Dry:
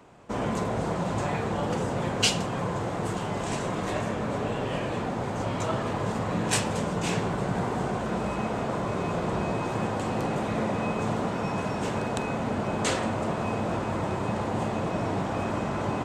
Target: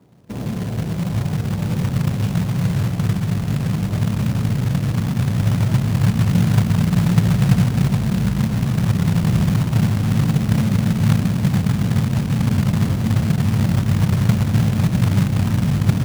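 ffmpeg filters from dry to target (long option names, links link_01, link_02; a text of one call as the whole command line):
ffmpeg -i in.wav -af "bandpass=frequency=150:width_type=q:width=1.3:csg=0,asubboost=boost=6.5:cutoff=150,acrusher=bits=3:mode=log:mix=0:aa=0.000001,volume=8dB" out.wav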